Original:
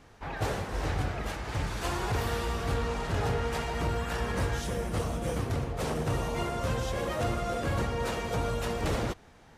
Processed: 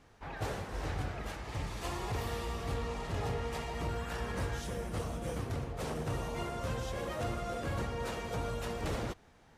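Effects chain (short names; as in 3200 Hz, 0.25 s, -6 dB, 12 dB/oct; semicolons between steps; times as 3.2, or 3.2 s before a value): 1.43–3.89 notch 1500 Hz, Q 7.1; gain -6 dB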